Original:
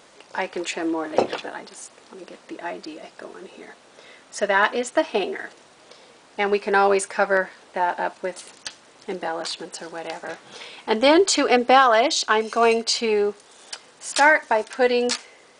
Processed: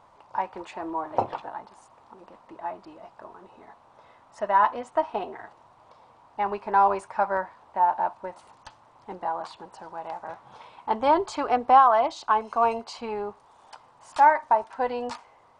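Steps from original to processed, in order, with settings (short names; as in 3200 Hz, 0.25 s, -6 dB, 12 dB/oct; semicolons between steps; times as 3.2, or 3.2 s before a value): EQ curve 110 Hz 0 dB, 180 Hz -12 dB, 450 Hz -17 dB, 970 Hz 0 dB, 1600 Hz -17 dB, 6900 Hz -26 dB; gain +4.5 dB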